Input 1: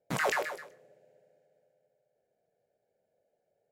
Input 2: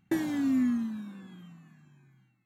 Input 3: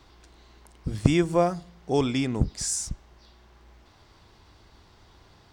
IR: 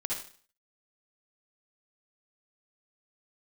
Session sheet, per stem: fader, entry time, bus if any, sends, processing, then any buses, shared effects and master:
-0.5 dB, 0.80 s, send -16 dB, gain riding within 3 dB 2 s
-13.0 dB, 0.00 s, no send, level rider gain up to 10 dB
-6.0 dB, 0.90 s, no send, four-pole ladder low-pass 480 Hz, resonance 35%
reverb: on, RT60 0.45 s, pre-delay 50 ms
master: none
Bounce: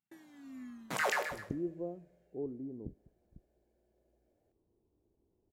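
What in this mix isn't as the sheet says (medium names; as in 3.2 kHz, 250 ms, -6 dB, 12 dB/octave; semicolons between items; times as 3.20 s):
stem 2 -13.0 dB -> -24.0 dB; stem 3: entry 0.90 s -> 0.45 s; master: extra bass shelf 250 Hz -12 dB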